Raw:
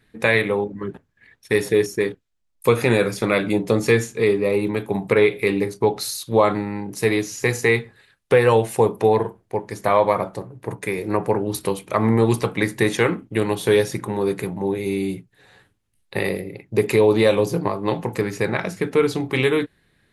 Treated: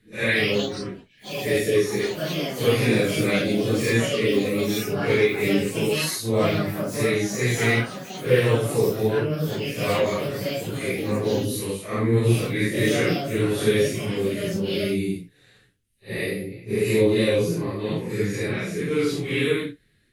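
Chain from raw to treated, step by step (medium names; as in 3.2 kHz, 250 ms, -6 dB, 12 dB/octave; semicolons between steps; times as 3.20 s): phase randomisation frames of 200 ms; ever faster or slower copies 215 ms, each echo +5 st, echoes 3, each echo -6 dB; peaking EQ 880 Hz -15 dB 1 oct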